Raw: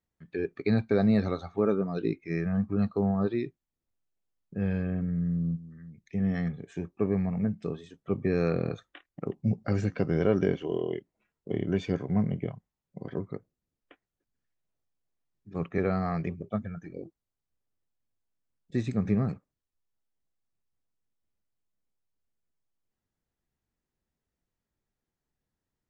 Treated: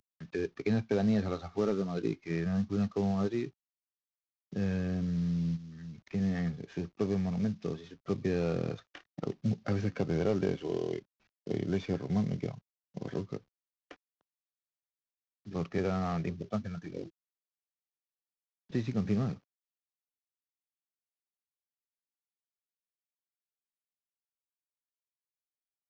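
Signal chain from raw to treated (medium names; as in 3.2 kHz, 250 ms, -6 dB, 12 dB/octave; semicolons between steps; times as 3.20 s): CVSD coder 32 kbps; three bands compressed up and down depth 40%; trim -3 dB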